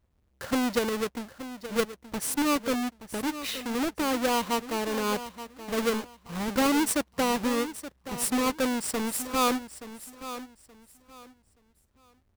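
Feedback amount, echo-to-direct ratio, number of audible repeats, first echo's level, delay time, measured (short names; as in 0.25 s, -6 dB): 25%, -12.5 dB, 2, -13.0 dB, 0.875 s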